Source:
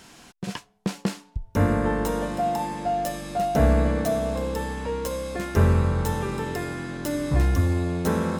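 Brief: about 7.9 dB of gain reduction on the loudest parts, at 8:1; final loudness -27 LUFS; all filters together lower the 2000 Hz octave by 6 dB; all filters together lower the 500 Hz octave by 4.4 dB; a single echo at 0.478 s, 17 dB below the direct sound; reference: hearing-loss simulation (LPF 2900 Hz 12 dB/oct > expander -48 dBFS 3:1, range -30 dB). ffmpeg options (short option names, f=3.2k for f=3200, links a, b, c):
-af "equalizer=f=500:t=o:g=-5.5,equalizer=f=2k:t=o:g=-6.5,acompressor=threshold=-23dB:ratio=8,lowpass=2.9k,aecho=1:1:478:0.141,agate=range=-30dB:threshold=-48dB:ratio=3,volume=3.5dB"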